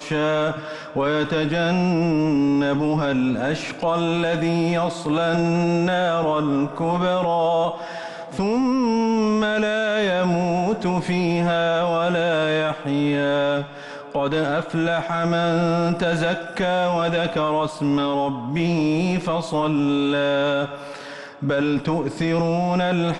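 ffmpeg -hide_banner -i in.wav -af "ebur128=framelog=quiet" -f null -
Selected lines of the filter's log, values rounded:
Integrated loudness:
  I:         -21.3 LUFS
  Threshold: -31.5 LUFS
Loudness range:
  LRA:         1.6 LU
  Threshold: -41.4 LUFS
  LRA low:   -22.3 LUFS
  LRA high:  -20.7 LUFS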